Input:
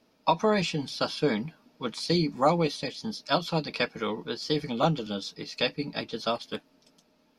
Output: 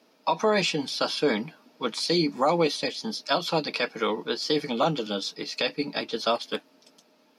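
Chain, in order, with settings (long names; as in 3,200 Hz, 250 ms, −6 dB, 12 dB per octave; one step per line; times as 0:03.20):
high-pass filter 260 Hz 12 dB per octave
brickwall limiter −18.5 dBFS, peak gain reduction 8.5 dB
level +5.5 dB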